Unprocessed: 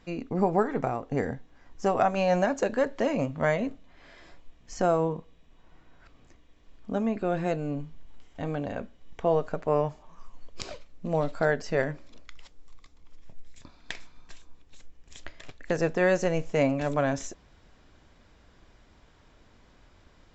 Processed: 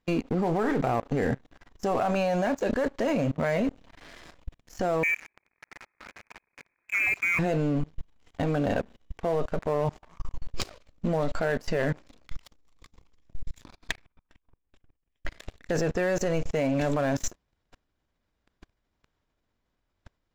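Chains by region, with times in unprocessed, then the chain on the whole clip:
0:05.03–0:07.39: converter with a step at zero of −41.5 dBFS + high-pass filter 320 Hz 24 dB per octave + voice inversion scrambler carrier 2,800 Hz
0:13.91–0:15.25: output level in coarse steps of 20 dB + Savitzky-Golay smoothing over 25 samples
whole clip: output level in coarse steps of 18 dB; leveller curve on the samples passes 3

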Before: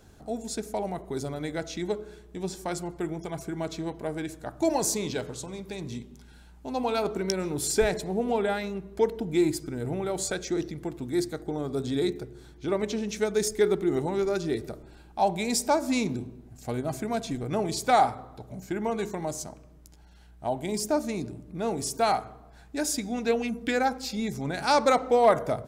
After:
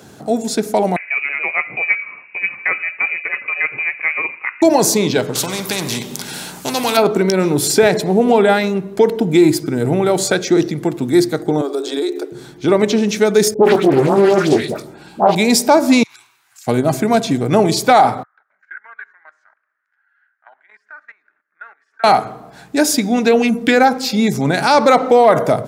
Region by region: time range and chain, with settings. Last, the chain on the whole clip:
0:00.96–0:04.62: high-pass filter 180 Hz + low-shelf EQ 440 Hz −4.5 dB + voice inversion scrambler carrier 2,700 Hz
0:05.35–0:06.97: bass and treble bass +4 dB, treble +8 dB + every bin compressed towards the loudest bin 2 to 1
0:11.61–0:12.32: Chebyshev high-pass filter 280 Hz, order 10 + parametric band 2,000 Hz −5.5 dB 0.31 octaves + downward compressor 4 to 1, threshold −32 dBFS
0:13.54–0:15.35: double-tracking delay 21 ms −10 dB + all-pass dispersion highs, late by 115 ms, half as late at 1,300 Hz + highs frequency-modulated by the lows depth 0.52 ms
0:16.03–0:16.67: inverse Chebyshev high-pass filter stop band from 570 Hz + downward compressor 12 to 1, threshold −52 dBFS
0:18.23–0:22.04: output level in coarse steps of 15 dB + flat-topped band-pass 1,600 Hz, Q 3.4
whole clip: high-pass filter 120 Hz 24 dB per octave; dynamic equaliser 7,800 Hz, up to −6 dB, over −47 dBFS, Q 1.4; boost into a limiter +16.5 dB; level −1 dB

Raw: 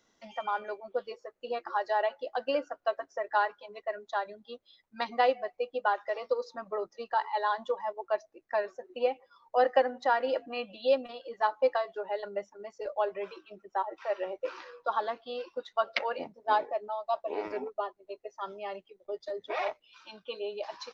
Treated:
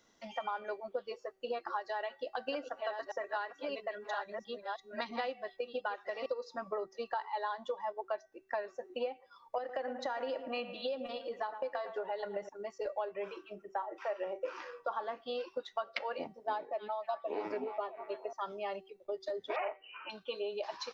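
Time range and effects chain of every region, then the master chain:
0:01.79–0:06.26: delay that plays each chunk backwards 664 ms, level −7.5 dB + dynamic equaliser 670 Hz, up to −6 dB, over −37 dBFS, Q 0.86
0:09.58–0:12.49: downward compressor 3 to 1, threshold −31 dBFS + bucket-brigade delay 111 ms, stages 2,048, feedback 49%, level −13 dB
0:13.12–0:15.28: parametric band 4,000 Hz −8.5 dB 0.41 octaves + double-tracking delay 36 ms −14 dB
0:16.41–0:18.33: high-pass filter 140 Hz 24 dB per octave + low-shelf EQ 220 Hz +8.5 dB + echo through a band-pass that steps 296 ms, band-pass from 2,700 Hz, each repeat −0.7 octaves, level −10 dB
0:19.56–0:20.10: mu-law and A-law mismatch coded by mu + linear-phase brick-wall low-pass 3,100 Hz + low shelf with overshoot 290 Hz −11 dB, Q 1.5
whole clip: downward compressor 6 to 1, threshold −35 dBFS; hum removal 383.9 Hz, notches 29; level +1.5 dB

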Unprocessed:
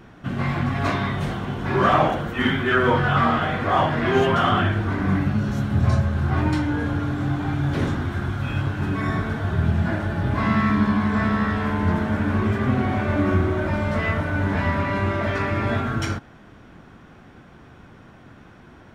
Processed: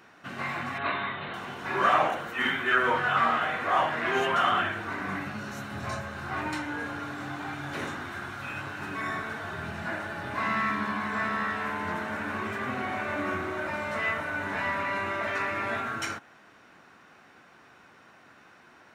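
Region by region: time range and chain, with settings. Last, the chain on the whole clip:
0:00.78–0:01.34: Chebyshev low-pass filter 4,000 Hz, order 6 + notch filter 750 Hz, Q 17
whole clip: high-pass filter 1,200 Hz 6 dB per octave; notch filter 3,300 Hz, Q 9.8; dynamic equaliser 4,800 Hz, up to −6 dB, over −54 dBFS, Q 3.1

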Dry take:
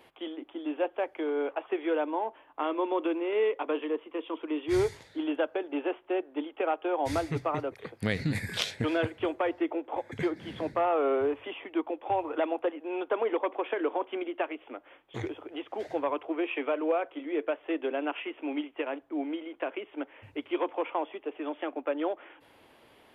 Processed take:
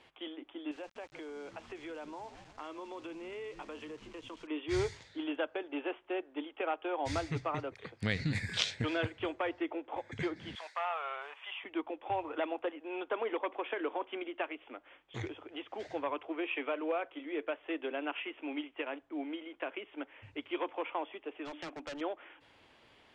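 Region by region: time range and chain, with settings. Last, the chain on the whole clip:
0:00.71–0:04.47: echo with shifted repeats 162 ms, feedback 55%, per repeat −100 Hz, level −20 dB + downward compressor 2.5 to 1, threshold −39 dBFS + centre clipping without the shift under −51.5 dBFS
0:10.55–0:11.64: high-pass filter 770 Hz 24 dB per octave + high-shelf EQ 6,500 Hz +12 dB
0:21.45–0:22.01: mains-hum notches 60/120/180/240/300 Hz + hard clipping −34.5 dBFS + high-shelf EQ 4,300 Hz +5.5 dB
whole clip: low-pass filter 7,700 Hz 24 dB per octave; parametric band 450 Hz −7 dB 3 octaves

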